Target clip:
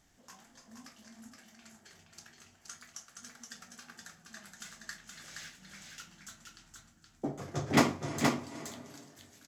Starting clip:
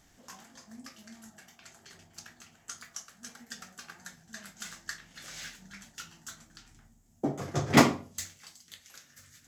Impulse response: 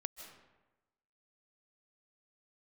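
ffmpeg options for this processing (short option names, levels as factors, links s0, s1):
-filter_complex "[0:a]aecho=1:1:472:0.631,asplit=2[s0][s1];[1:a]atrim=start_sample=2205,asetrate=22491,aresample=44100[s2];[s1][s2]afir=irnorm=-1:irlink=0,volume=0.422[s3];[s0][s3]amix=inputs=2:normalize=0,volume=0.376"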